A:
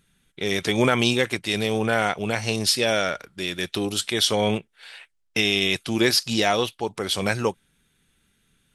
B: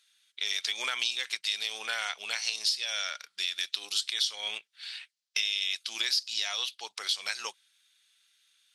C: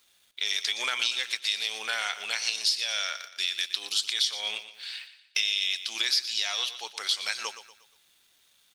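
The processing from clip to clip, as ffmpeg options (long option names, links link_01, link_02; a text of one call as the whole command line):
ffmpeg -i in.wav -af "highpass=1200,equalizer=frequency=4600:width_type=o:width=1.5:gain=15,acompressor=threshold=-21dB:ratio=4,volume=-7dB" out.wav
ffmpeg -i in.wav -af "acrusher=bits=10:mix=0:aa=0.000001,aecho=1:1:119|238|357|476:0.237|0.0949|0.0379|0.0152,volume=2.5dB" out.wav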